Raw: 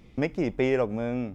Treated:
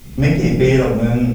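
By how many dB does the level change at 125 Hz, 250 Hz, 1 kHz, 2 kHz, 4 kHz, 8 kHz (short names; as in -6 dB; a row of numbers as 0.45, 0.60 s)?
+19.5 dB, +12.5 dB, +8.5 dB, +10.5 dB, +13.5 dB, n/a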